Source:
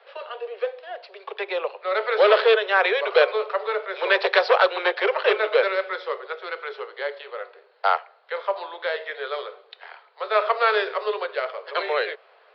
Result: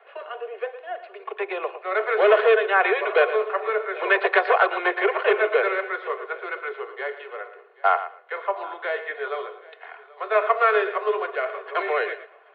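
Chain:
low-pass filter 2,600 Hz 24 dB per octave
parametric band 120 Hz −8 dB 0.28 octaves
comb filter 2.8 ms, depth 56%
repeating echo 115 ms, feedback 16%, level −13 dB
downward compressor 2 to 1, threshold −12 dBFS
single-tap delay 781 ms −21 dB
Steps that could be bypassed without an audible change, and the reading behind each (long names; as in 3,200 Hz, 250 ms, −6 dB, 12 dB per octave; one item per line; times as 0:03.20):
parametric band 120 Hz: nothing at its input below 340 Hz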